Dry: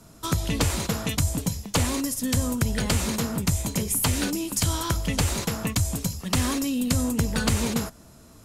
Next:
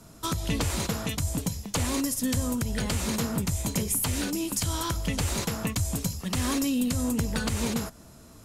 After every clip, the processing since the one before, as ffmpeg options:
ffmpeg -i in.wav -af "alimiter=limit=-16.5dB:level=0:latency=1:release=224" out.wav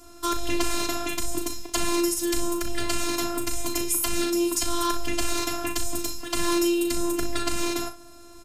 ffmpeg -i in.wav -filter_complex "[0:a]afftfilt=real='hypot(re,im)*cos(PI*b)':imag='0':win_size=512:overlap=0.75,asplit=2[link_01][link_02];[link_02]aecho=0:1:37|61:0.376|0.211[link_03];[link_01][link_03]amix=inputs=2:normalize=0,volume=6dB" out.wav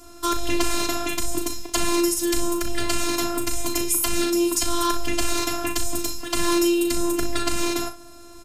ffmpeg -i in.wav -af "aeval=exprs='0.631*(cos(1*acos(clip(val(0)/0.631,-1,1)))-cos(1*PI/2))+0.00398*(cos(2*acos(clip(val(0)/0.631,-1,1)))-cos(2*PI/2))+0.00631*(cos(4*acos(clip(val(0)/0.631,-1,1)))-cos(4*PI/2))':channel_layout=same,volume=3dB" out.wav

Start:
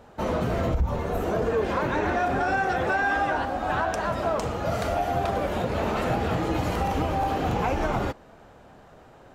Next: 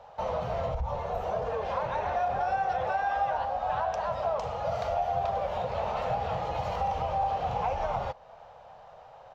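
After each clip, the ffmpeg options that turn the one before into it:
ffmpeg -i in.wav -filter_complex "[0:a]firequalizer=gain_entry='entry(140,0);entry(300,-17);entry(510,9);entry(800,14);entry(1500,3);entry(2900,7);entry(5800,5);entry(9000,-12);entry(14000,-5)':delay=0.05:min_phase=1,acrossover=split=360[link_01][link_02];[link_02]acompressor=threshold=-30dB:ratio=1.5[link_03];[link_01][link_03]amix=inputs=2:normalize=0,volume=-8.5dB" out.wav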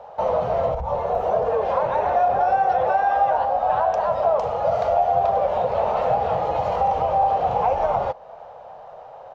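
ffmpeg -i in.wav -af "equalizer=frequency=510:width=0.42:gain=11" out.wav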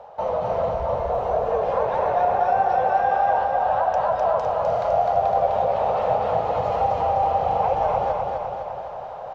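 ffmpeg -i in.wav -af "areverse,acompressor=mode=upward:threshold=-26dB:ratio=2.5,areverse,aecho=1:1:254|508|762|1016|1270|1524|1778|2032|2286:0.708|0.425|0.255|0.153|0.0917|0.055|0.033|0.0198|0.0119,volume=-3dB" out.wav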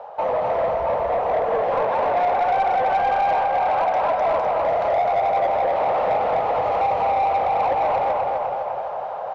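ffmpeg -i in.wav -filter_complex "[0:a]asplit=2[link_01][link_02];[link_02]highpass=frequency=720:poles=1,volume=18dB,asoftclip=type=tanh:threshold=-8.5dB[link_03];[link_01][link_03]amix=inputs=2:normalize=0,lowpass=frequency=1700:poles=1,volume=-6dB,volume=-3.5dB" out.wav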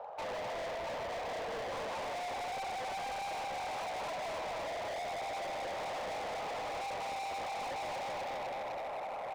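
ffmpeg -i in.wav -af "volume=30dB,asoftclip=hard,volume=-30dB,volume=-8dB" out.wav

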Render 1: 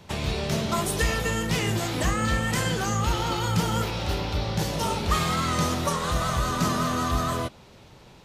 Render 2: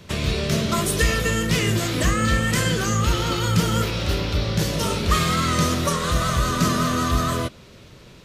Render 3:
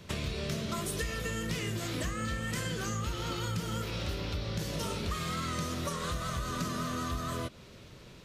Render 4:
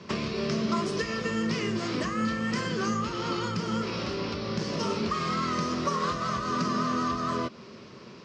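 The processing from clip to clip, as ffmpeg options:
ffmpeg -i in.wav -af "equalizer=frequency=830:width_type=o:width=0.37:gain=-13,volume=5dB" out.wav
ffmpeg -i in.wav -af "acompressor=threshold=-26dB:ratio=6,volume=-5.5dB" out.wav
ffmpeg -i in.wav -af "highpass=150,equalizer=frequency=220:width_type=q:width=4:gain=8,equalizer=frequency=390:width_type=q:width=4:gain=6,equalizer=frequency=1100:width_type=q:width=4:gain=8,equalizer=frequency=3600:width_type=q:width=4:gain=-6,equalizer=frequency=5100:width_type=q:width=4:gain=6,lowpass=frequency=5700:width=0.5412,lowpass=frequency=5700:width=1.3066,volume=4dB" out.wav

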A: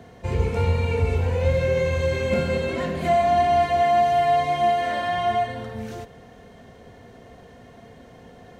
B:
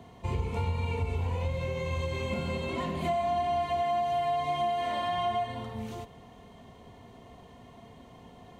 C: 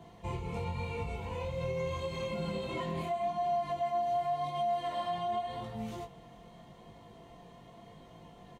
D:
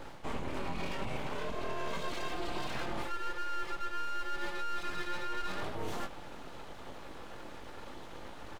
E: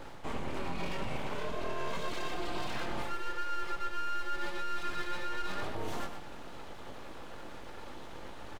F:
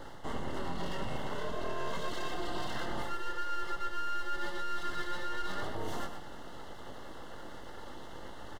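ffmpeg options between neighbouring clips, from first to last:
ffmpeg -i in.wav -af "equalizer=frequency=5400:width=4.2:gain=-4,acompressor=threshold=-22dB:ratio=6,equalizer=frequency=500:width_type=o:width=0.33:gain=-7,equalizer=frequency=1000:width_type=o:width=0.33:gain=7,equalizer=frequency=1600:width_type=o:width=0.33:gain=-11,equalizer=frequency=3150:width_type=o:width=0.33:gain=3,volume=-4dB" out.wav
ffmpeg -i in.wav -af "aecho=1:1:5.9:0.54,alimiter=level_in=0.5dB:limit=-24dB:level=0:latency=1:release=118,volume=-0.5dB,flanger=delay=18.5:depth=4.7:speed=0.86" out.wav
ffmpeg -i in.wav -af "areverse,acompressor=threshold=-40dB:ratio=6,areverse,aeval=exprs='abs(val(0))':channel_layout=same,volume=9dB" out.wav
ffmpeg -i in.wav -af "aecho=1:1:120:0.355" out.wav
ffmpeg -i in.wav -af "asuperstop=centerf=2400:order=12:qfactor=5" out.wav

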